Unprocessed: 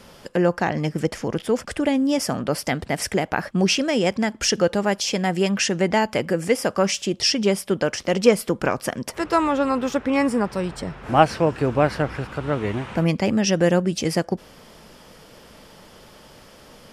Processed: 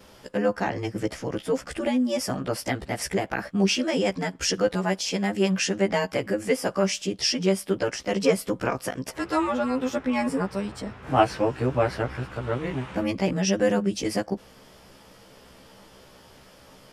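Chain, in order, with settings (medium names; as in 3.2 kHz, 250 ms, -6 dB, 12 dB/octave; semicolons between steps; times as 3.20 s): short-time spectra conjugated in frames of 31 ms; trim -1 dB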